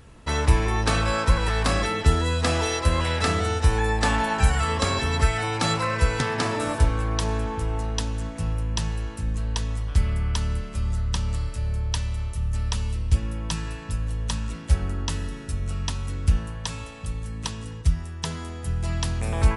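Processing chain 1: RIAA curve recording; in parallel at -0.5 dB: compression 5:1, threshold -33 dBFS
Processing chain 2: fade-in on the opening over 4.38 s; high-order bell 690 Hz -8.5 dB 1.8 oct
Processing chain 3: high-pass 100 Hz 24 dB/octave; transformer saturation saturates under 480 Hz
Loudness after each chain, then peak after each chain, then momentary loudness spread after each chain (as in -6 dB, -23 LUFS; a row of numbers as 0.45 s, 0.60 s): -23.0 LUFS, -27.5 LUFS, -29.0 LUFS; -1.5 dBFS, -7.5 dBFS, -7.0 dBFS; 11 LU, 9 LU, 11 LU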